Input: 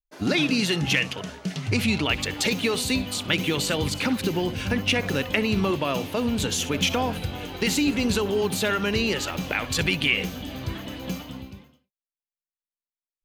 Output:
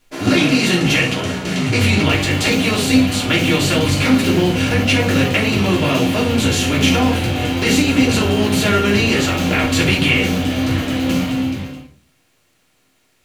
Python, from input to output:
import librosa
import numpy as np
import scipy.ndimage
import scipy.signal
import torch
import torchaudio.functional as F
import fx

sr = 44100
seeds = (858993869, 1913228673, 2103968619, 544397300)

y = fx.bin_compress(x, sr, power=0.6)
y = fx.room_shoebox(y, sr, seeds[0], volume_m3=170.0, walls='furnished', distance_m=3.1)
y = y * 10.0 ** (-3.0 / 20.0)